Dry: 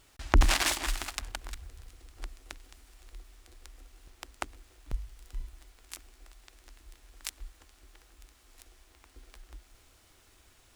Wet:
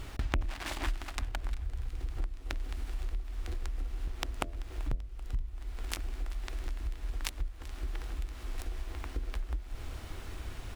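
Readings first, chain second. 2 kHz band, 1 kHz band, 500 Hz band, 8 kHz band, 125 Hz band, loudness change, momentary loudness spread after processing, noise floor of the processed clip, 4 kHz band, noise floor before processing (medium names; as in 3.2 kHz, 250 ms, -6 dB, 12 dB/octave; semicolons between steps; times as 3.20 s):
-5.5 dB, -5.0 dB, -2.5 dB, -9.5 dB, +1.0 dB, -7.0 dB, 6 LU, -45 dBFS, -7.0 dB, -62 dBFS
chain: rattle on loud lows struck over -19 dBFS, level -28 dBFS; bass shelf 240 Hz +9.5 dB; in parallel at -6.5 dB: sample-rate reducer 11 kHz, jitter 0%; on the sum: treble shelf 4.6 kHz -6.5 dB; compression 8:1, threshold -43 dBFS, peak gain reduction 37.5 dB; de-hum 84.8 Hz, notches 8; on a send: feedback delay 386 ms, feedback 52%, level -20 dB; on the sum: trim +12 dB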